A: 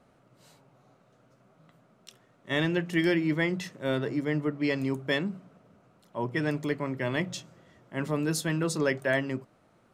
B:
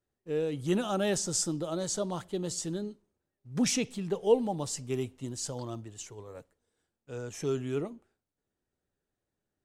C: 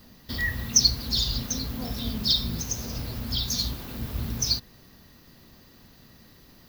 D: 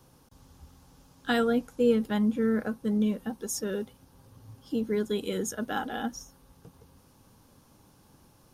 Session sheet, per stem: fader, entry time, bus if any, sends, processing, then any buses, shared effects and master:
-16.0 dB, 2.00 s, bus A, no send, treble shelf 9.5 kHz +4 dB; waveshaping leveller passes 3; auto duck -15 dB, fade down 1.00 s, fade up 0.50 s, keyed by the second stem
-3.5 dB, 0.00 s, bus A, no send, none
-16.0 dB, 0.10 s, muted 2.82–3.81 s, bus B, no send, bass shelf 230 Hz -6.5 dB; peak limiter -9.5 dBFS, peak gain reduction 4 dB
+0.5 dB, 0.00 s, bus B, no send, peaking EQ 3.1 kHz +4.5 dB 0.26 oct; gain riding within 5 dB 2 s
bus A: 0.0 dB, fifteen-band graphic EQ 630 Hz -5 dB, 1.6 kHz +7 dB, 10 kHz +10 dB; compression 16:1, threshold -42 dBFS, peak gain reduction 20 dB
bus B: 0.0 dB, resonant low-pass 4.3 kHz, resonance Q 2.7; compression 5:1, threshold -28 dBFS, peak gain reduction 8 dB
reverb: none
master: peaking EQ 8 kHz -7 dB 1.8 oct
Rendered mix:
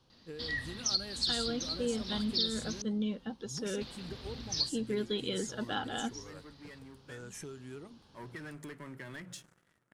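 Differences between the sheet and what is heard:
stem C -16.0 dB -> -9.5 dB; stem D +0.5 dB -> -7.0 dB; master: missing peaking EQ 8 kHz -7 dB 1.8 oct

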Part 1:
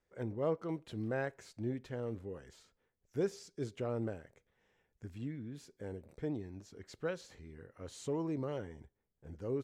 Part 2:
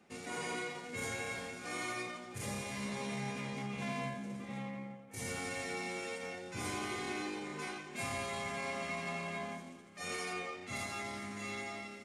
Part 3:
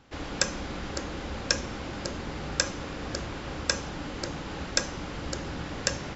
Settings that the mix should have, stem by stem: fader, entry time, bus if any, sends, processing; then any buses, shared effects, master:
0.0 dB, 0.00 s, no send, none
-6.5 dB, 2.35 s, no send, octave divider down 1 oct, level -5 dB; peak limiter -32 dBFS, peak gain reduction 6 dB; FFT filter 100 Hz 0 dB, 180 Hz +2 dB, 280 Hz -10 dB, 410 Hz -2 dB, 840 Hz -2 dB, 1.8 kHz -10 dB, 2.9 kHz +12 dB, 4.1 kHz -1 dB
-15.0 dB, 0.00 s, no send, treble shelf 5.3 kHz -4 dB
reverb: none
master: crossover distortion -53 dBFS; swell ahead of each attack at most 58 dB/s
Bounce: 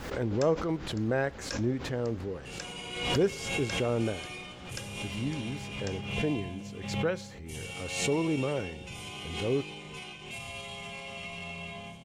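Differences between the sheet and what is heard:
stem 1 0.0 dB -> +7.5 dB; stem 2 -6.5 dB -> 0.0 dB; master: missing crossover distortion -53 dBFS

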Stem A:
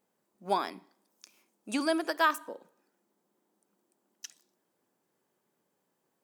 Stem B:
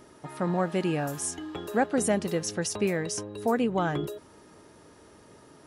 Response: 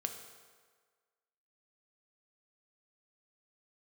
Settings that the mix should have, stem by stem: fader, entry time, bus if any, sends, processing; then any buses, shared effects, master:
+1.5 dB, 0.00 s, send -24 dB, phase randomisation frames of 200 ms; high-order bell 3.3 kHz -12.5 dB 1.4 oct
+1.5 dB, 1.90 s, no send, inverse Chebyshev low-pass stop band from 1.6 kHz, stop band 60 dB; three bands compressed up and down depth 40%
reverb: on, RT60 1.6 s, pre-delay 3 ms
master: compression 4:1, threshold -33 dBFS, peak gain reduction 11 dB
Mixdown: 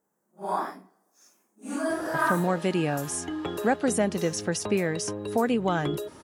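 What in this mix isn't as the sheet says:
stem B: missing inverse Chebyshev low-pass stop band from 1.6 kHz, stop band 60 dB; master: missing compression 4:1, threshold -33 dBFS, peak gain reduction 11 dB

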